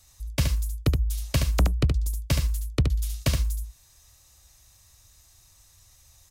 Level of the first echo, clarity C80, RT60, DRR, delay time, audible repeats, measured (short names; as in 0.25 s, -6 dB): -5.5 dB, none, none, none, 72 ms, 1